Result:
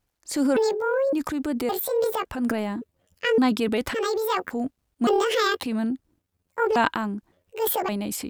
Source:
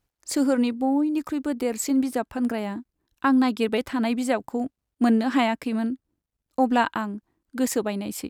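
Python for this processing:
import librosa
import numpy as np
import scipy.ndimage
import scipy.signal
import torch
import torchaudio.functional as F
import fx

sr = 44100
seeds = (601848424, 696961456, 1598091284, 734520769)

y = fx.pitch_trill(x, sr, semitones=10.0, every_ms=563)
y = fx.transient(y, sr, attack_db=-3, sustain_db=8)
y = fx.wow_flutter(y, sr, seeds[0], rate_hz=2.1, depth_cents=26.0)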